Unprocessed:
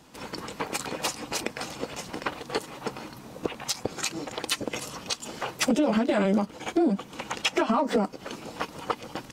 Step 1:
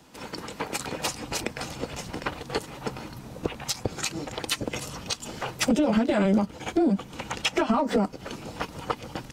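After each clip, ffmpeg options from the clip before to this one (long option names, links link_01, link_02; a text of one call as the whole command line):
ffmpeg -i in.wav -filter_complex "[0:a]bandreject=frequency=1100:width=23,acrossover=split=130|5900[link_01][link_02][link_03];[link_01]dynaudnorm=framelen=580:gausssize=3:maxgain=10.5dB[link_04];[link_04][link_02][link_03]amix=inputs=3:normalize=0" out.wav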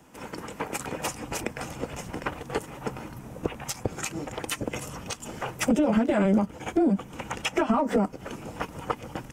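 ffmpeg -i in.wav -af "equalizer=frequency=4200:width=2.1:gain=-12.5" out.wav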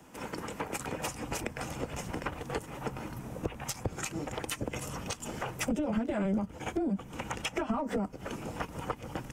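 ffmpeg -i in.wav -filter_complex "[0:a]acrossover=split=120[link_01][link_02];[link_02]acompressor=threshold=-34dB:ratio=2.5[link_03];[link_01][link_03]amix=inputs=2:normalize=0" out.wav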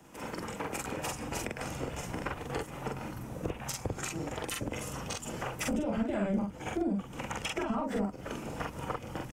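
ffmpeg -i in.wav -filter_complex "[0:a]asplit=2[link_01][link_02];[link_02]adelay=45,volume=-2dB[link_03];[link_01][link_03]amix=inputs=2:normalize=0,volume=-2dB" out.wav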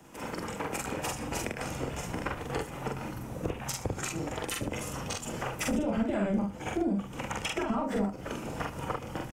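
ffmpeg -i in.wav -af "aecho=1:1:75:0.188,volume=2dB" out.wav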